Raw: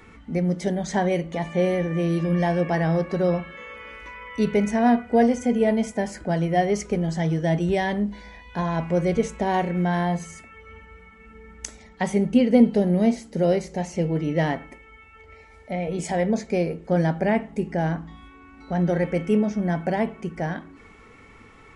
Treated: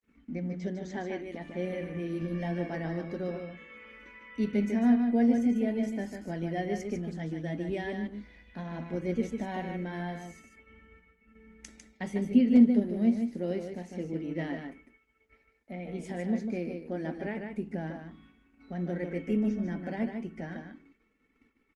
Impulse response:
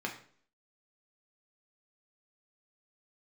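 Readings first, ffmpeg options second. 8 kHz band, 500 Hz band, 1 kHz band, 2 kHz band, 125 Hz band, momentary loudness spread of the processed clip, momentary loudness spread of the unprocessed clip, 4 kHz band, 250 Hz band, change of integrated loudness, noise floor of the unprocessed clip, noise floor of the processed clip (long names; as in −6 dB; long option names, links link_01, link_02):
below −15 dB, −12.0 dB, −15.0 dB, −10.5 dB, −12.0 dB, 18 LU, 13 LU, below −10 dB, −5.5 dB, −7.5 dB, −49 dBFS, −70 dBFS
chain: -af "agate=range=-43dB:threshold=-46dB:ratio=16:detection=peak,flanger=delay=0.5:depth=9.2:regen=-68:speed=0.11:shape=triangular,equalizer=frequency=125:width_type=o:width=1:gain=-11,equalizer=frequency=250:width_type=o:width=1:gain=11,equalizer=frequency=500:width_type=o:width=1:gain=-3,equalizer=frequency=1000:width_type=o:width=1:gain=-6,equalizer=frequency=2000:width_type=o:width=1:gain=3,equalizer=frequency=8000:width_type=o:width=1:gain=-5,aecho=1:1:150:0.501,volume=-7.5dB" -ar 48000 -c:a libopus -b:a 24k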